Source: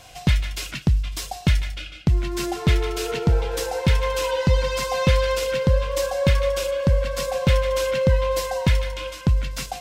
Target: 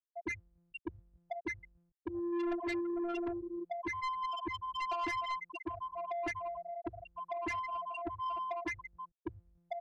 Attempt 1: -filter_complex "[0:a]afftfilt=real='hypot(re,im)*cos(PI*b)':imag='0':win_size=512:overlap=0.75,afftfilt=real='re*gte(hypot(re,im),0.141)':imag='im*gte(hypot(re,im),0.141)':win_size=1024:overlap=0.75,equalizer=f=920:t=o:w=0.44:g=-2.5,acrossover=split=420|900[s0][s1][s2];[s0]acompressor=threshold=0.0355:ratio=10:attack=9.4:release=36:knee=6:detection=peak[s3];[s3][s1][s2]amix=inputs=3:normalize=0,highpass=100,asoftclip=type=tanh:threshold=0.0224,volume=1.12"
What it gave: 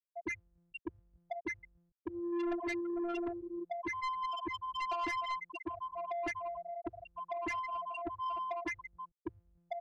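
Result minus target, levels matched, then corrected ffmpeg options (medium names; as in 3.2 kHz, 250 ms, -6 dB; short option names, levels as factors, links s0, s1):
compression: peak gain reduction +8.5 dB
-filter_complex "[0:a]afftfilt=real='hypot(re,im)*cos(PI*b)':imag='0':win_size=512:overlap=0.75,afftfilt=real='re*gte(hypot(re,im),0.141)':imag='im*gte(hypot(re,im),0.141)':win_size=1024:overlap=0.75,equalizer=f=920:t=o:w=0.44:g=-2.5,acrossover=split=420|900[s0][s1][s2];[s0]acompressor=threshold=0.112:ratio=10:attack=9.4:release=36:knee=6:detection=peak[s3];[s3][s1][s2]amix=inputs=3:normalize=0,highpass=100,asoftclip=type=tanh:threshold=0.0224,volume=1.12"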